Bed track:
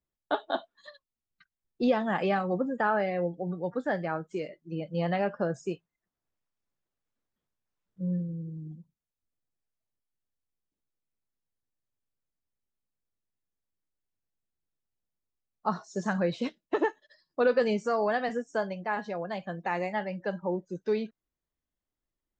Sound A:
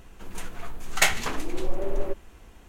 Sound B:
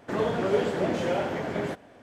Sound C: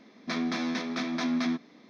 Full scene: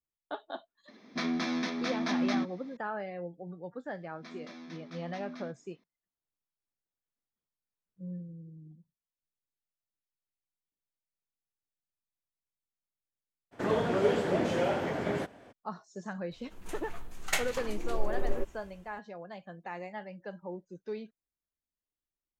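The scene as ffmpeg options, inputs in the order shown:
-filter_complex "[3:a]asplit=2[a][b];[0:a]volume=-10dB[c];[1:a]dynaudnorm=f=130:g=7:m=13dB[d];[a]atrim=end=1.89,asetpts=PTS-STARTPTS,volume=-1.5dB,afade=t=in:d=0.004:c=hsin,afade=t=out:st=1.886:d=0.004:c=hsin,adelay=880[e];[b]atrim=end=1.89,asetpts=PTS-STARTPTS,volume=-17dB,afade=t=in:d=0.004:c=hsin,afade=t=out:st=1.886:d=0.004:c=hsin,adelay=3950[f];[2:a]atrim=end=2.02,asetpts=PTS-STARTPTS,volume=-2dB,afade=t=in:d=0.02,afade=t=out:st=2:d=0.02,adelay=13510[g];[d]atrim=end=2.68,asetpts=PTS-STARTPTS,volume=-13.5dB,afade=t=in:d=0.004:c=hsin,afade=t=out:st=2.676:d=0.004:c=hsin,adelay=16310[h];[c][e][f][g][h]amix=inputs=5:normalize=0"

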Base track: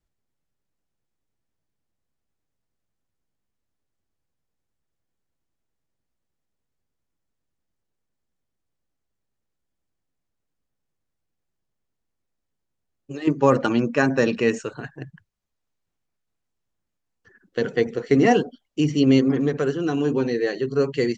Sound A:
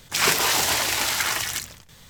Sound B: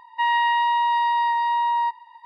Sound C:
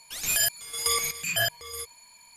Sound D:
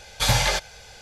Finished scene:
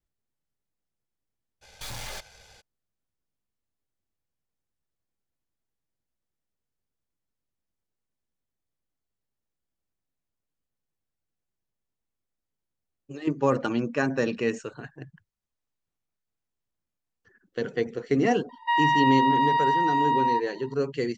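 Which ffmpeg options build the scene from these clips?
-filter_complex "[0:a]volume=-6dB[a];[4:a]aeval=exprs='(tanh(44.7*val(0)+0.8)-tanh(0.8))/44.7':c=same,atrim=end=1.01,asetpts=PTS-STARTPTS,volume=-3.5dB,afade=t=in:d=0.02,afade=t=out:st=0.99:d=0.02,adelay=1610[b];[2:a]atrim=end=2.25,asetpts=PTS-STARTPTS,volume=-2dB,afade=t=in:d=0.004:c=hsin,afade=t=out:st=2.246:d=0.004:c=hsin,adelay=18490[c];[a][b][c]amix=inputs=3:normalize=0"

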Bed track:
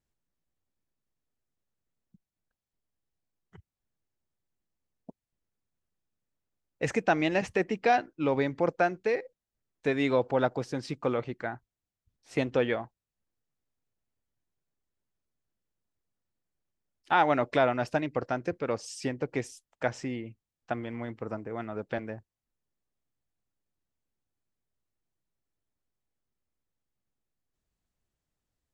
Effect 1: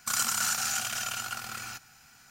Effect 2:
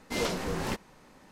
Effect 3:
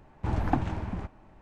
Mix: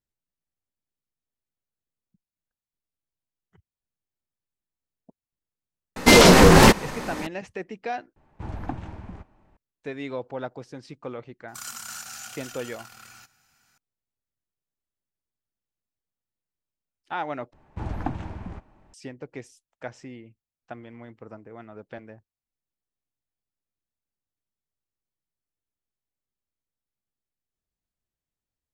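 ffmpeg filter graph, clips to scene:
-filter_complex "[3:a]asplit=2[a][b];[0:a]volume=-7dB[c];[2:a]alimiter=level_in=23.5dB:limit=-1dB:release=50:level=0:latency=1[d];[c]asplit=3[e][f][g];[e]atrim=end=8.164[h];[a]atrim=end=1.41,asetpts=PTS-STARTPTS,volume=-6dB[i];[f]atrim=start=9.566:end=17.534[j];[b]atrim=end=1.41,asetpts=PTS-STARTPTS,volume=-3dB[k];[g]atrim=start=18.936[l];[d]atrim=end=1.31,asetpts=PTS-STARTPTS,volume=-1dB,afade=t=in:d=0.004:c=hsin,afade=t=out:st=1.306:d=0.004:c=hsin,adelay=5960[m];[1:a]atrim=end=2.3,asetpts=PTS-STARTPTS,volume=-9.5dB,afade=t=in:d=0.004:c=hsin,afade=t=out:st=2.296:d=0.004:c=hsin,adelay=11480[n];[h][i]acrossfade=d=0.004:c1=hsin:c2=hsin[o];[o][j]acrossfade=d=0.004:c1=hsin:c2=hsin[p];[p][k]acrossfade=d=0.004:c1=hsin:c2=hsin[q];[q][l]acrossfade=d=0.004:c1=hsin:c2=hsin[r];[r][m][n]amix=inputs=3:normalize=0"

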